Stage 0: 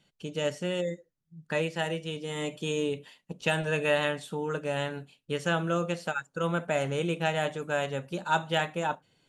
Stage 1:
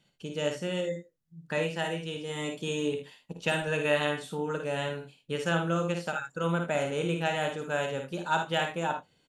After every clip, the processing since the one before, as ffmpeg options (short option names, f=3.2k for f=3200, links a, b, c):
-af "aecho=1:1:54|77:0.501|0.266,volume=-1.5dB"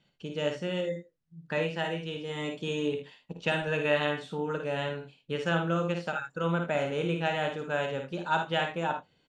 -af "lowpass=4.7k"